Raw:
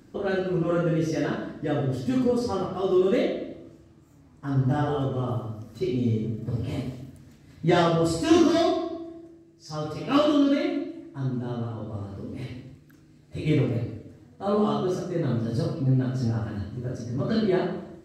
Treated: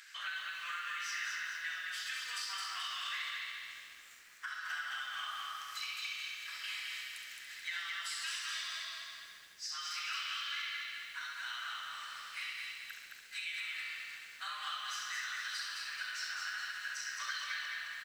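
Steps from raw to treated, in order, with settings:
Butterworth high-pass 1,600 Hz 36 dB per octave
high-shelf EQ 3,500 Hz −10 dB
downward compressor 16 to 1, threshold −56 dBFS, peak gain reduction 25.5 dB
on a send: repeating echo 67 ms, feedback 55%, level −7 dB
on the sum: feedback echo at a low word length 216 ms, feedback 55%, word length 13 bits, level −3 dB
level +16.5 dB

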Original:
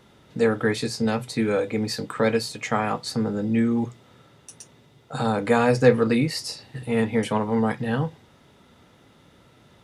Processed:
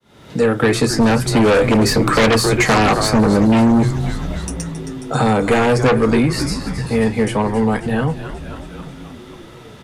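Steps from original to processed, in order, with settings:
fade in at the beginning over 0.92 s
source passing by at 0:02.40, 6 m/s, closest 6.9 metres
on a send: echo with shifted repeats 269 ms, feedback 59%, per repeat −98 Hz, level −14 dB
on the sum: dynamic equaliser 3,900 Hz, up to −5 dB, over −59 dBFS, Q 1.3
in parallel at −4 dB: sine wavefolder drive 12 dB, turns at −12.5 dBFS
on the sum: multiband upward and downward compressor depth 40%
level +4.5 dB

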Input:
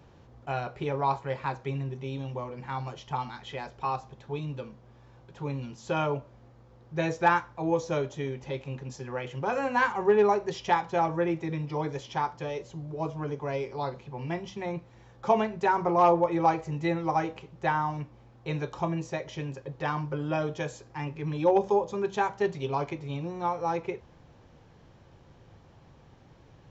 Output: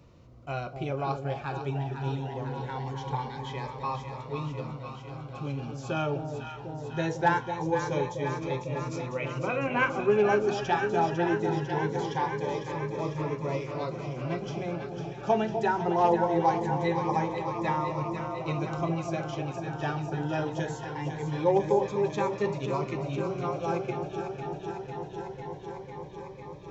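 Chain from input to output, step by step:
0:09.18–0:09.90: high shelf with overshoot 3,700 Hz −13 dB, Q 3
delay that swaps between a low-pass and a high-pass 250 ms, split 820 Hz, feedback 89%, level −6.5 dB
phaser whose notches keep moving one way rising 0.22 Hz

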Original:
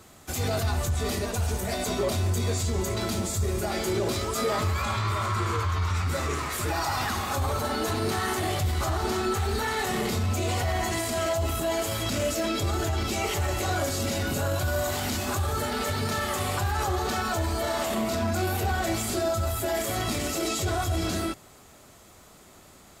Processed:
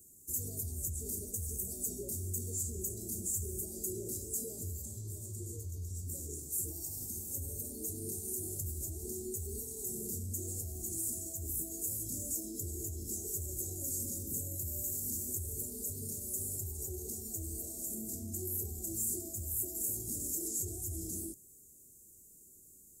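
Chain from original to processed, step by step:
elliptic band-stop filter 400–7,300 Hz, stop band 80 dB
first-order pre-emphasis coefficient 0.8

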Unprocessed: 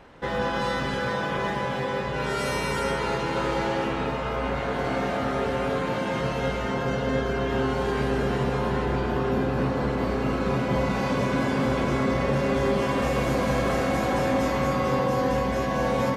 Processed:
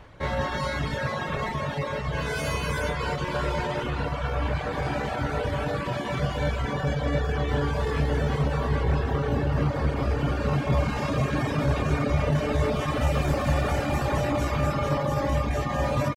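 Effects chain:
reverb reduction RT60 0.84 s
low shelf with overshoot 140 Hz +8 dB, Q 1.5
pitch shifter +1.5 semitones

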